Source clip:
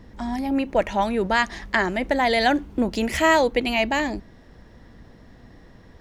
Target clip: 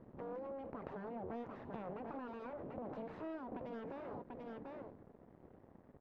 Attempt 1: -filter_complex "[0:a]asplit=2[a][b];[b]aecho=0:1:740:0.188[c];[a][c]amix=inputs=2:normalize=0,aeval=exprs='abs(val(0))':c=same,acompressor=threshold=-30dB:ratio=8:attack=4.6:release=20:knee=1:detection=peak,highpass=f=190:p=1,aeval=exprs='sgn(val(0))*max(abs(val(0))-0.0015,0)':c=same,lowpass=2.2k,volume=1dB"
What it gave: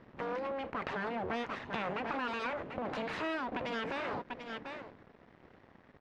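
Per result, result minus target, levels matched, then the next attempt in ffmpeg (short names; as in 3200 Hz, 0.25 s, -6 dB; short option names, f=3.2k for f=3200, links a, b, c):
2000 Hz band +10.0 dB; compressor: peak gain reduction -5.5 dB
-filter_complex "[0:a]asplit=2[a][b];[b]aecho=0:1:740:0.188[c];[a][c]amix=inputs=2:normalize=0,aeval=exprs='abs(val(0))':c=same,acompressor=threshold=-30dB:ratio=8:attack=4.6:release=20:knee=1:detection=peak,highpass=f=190:p=1,aeval=exprs='sgn(val(0))*max(abs(val(0))-0.0015,0)':c=same,lowpass=720,volume=1dB"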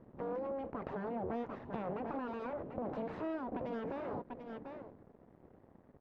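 compressor: peak gain reduction -5.5 dB
-filter_complex "[0:a]asplit=2[a][b];[b]aecho=0:1:740:0.188[c];[a][c]amix=inputs=2:normalize=0,aeval=exprs='abs(val(0))':c=same,acompressor=threshold=-36.5dB:ratio=8:attack=4.6:release=20:knee=1:detection=peak,highpass=f=190:p=1,aeval=exprs='sgn(val(0))*max(abs(val(0))-0.0015,0)':c=same,lowpass=720,volume=1dB"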